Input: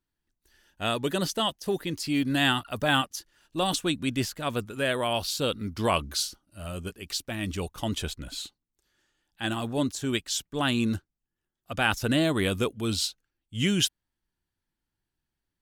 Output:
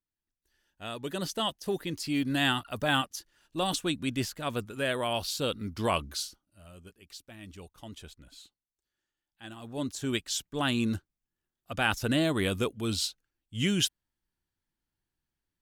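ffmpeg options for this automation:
ffmpeg -i in.wav -af "volume=9.5dB,afade=type=in:start_time=0.89:duration=0.59:silence=0.398107,afade=type=out:start_time=5.92:duration=0.72:silence=0.251189,afade=type=in:start_time=9.59:duration=0.45:silence=0.237137" out.wav

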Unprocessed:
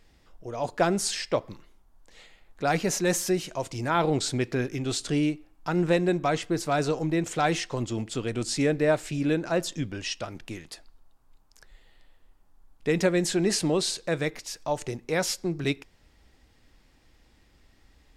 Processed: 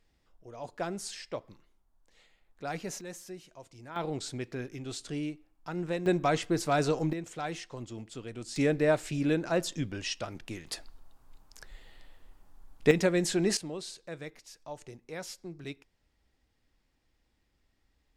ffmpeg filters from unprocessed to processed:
ffmpeg -i in.wav -af "asetnsamples=nb_out_samples=441:pad=0,asendcmd='3.01 volume volume -18.5dB;3.96 volume volume -10dB;6.06 volume volume -1.5dB;7.13 volume volume -11.5dB;8.56 volume volume -2.5dB;10.67 volume volume 4.5dB;12.91 volume volume -3dB;13.57 volume volume -14dB',volume=-11.5dB" out.wav

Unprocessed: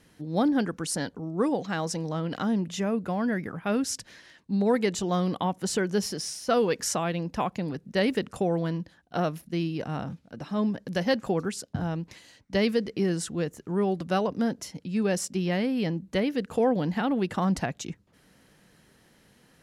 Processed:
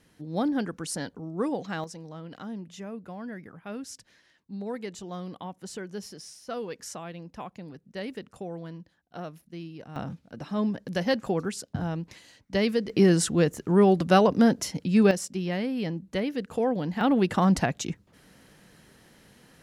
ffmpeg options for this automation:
ffmpeg -i in.wav -af "asetnsamples=nb_out_samples=441:pad=0,asendcmd='1.84 volume volume -11dB;9.96 volume volume -0.5dB;12.9 volume volume 7dB;15.11 volume volume -2.5dB;17.01 volume volume 4dB',volume=-3dB" out.wav

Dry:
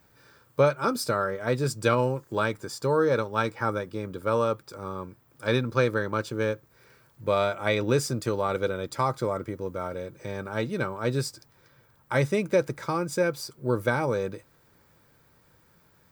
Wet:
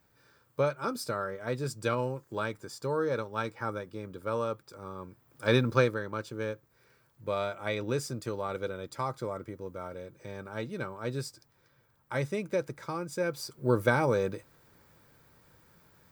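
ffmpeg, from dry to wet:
ffmpeg -i in.wav -af "volume=9dB,afade=type=in:start_time=4.97:duration=0.73:silence=0.375837,afade=type=out:start_time=5.7:duration=0.27:silence=0.354813,afade=type=in:start_time=13.17:duration=0.49:silence=0.421697" out.wav

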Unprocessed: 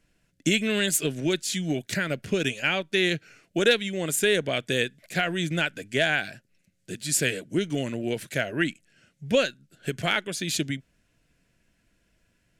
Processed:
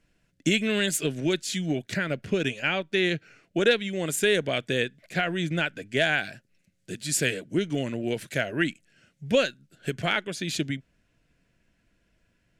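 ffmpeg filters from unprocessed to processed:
ffmpeg -i in.wav -af "asetnsamples=nb_out_samples=441:pad=0,asendcmd='1.66 lowpass f 3400;3.89 lowpass f 7700;4.68 lowpass f 3500;5.97 lowpass f 9100;7.34 lowpass f 5000;8.06 lowpass f 9000;9.93 lowpass f 4300',lowpass=frequency=6400:poles=1" out.wav

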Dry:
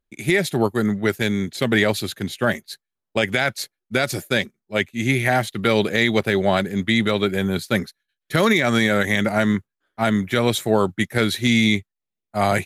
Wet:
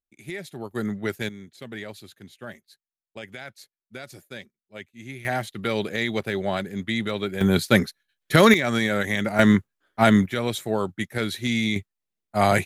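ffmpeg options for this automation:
ffmpeg -i in.wav -af "asetnsamples=nb_out_samples=441:pad=0,asendcmd='0.71 volume volume -7.5dB;1.29 volume volume -18.5dB;5.25 volume volume -7.5dB;7.41 volume volume 3dB;8.54 volume volume -5dB;9.39 volume volume 3dB;10.26 volume volume -7dB;11.76 volume volume 0dB',volume=-16dB" out.wav

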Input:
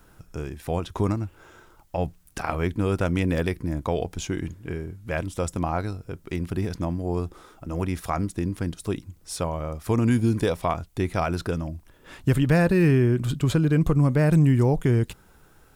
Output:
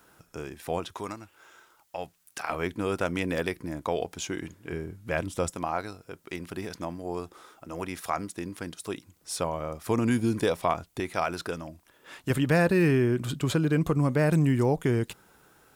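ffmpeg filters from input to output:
ffmpeg -i in.wav -af "asetnsamples=nb_out_samples=441:pad=0,asendcmd='0.94 highpass f 1300;2.5 highpass f 410;4.72 highpass f 150;5.5 highpass f 590;9.21 highpass f 260;11 highpass f 570;12.3 highpass f 250',highpass=frequency=370:poles=1" out.wav

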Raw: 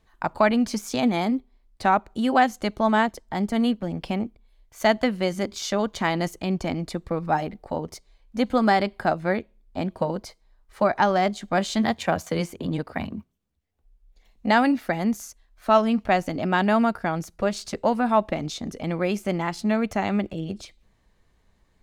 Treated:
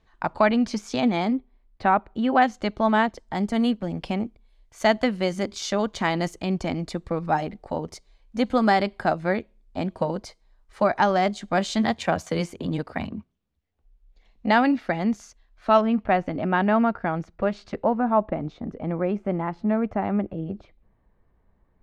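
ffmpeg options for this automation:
ffmpeg -i in.wav -af "asetnsamples=nb_out_samples=441:pad=0,asendcmd='1.33 lowpass f 2800;2.42 lowpass f 4900;3.18 lowpass f 8800;13.09 lowpass f 4600;15.81 lowpass f 2300;17.84 lowpass f 1300',lowpass=5400" out.wav

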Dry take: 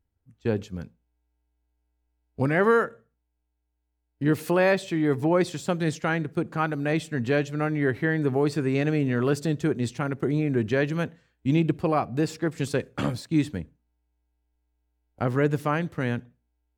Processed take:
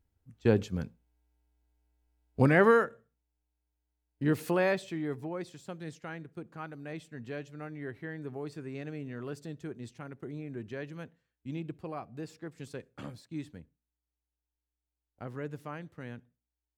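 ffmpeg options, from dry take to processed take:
ffmpeg -i in.wav -af "volume=1dB,afade=type=out:start_time=2.46:duration=0.4:silence=0.501187,afade=type=out:start_time=4.44:duration=0.87:silence=0.281838" out.wav

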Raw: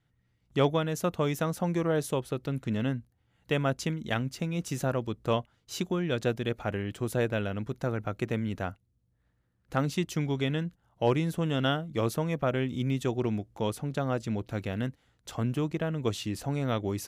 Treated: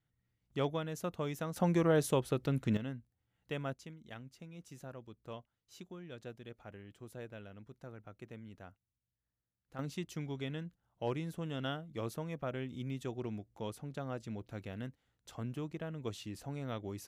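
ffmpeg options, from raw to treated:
ffmpeg -i in.wav -af "asetnsamples=nb_out_samples=441:pad=0,asendcmd='1.56 volume volume -1dB;2.77 volume volume -11.5dB;3.74 volume volume -19dB;9.79 volume volume -11dB',volume=-9.5dB" out.wav

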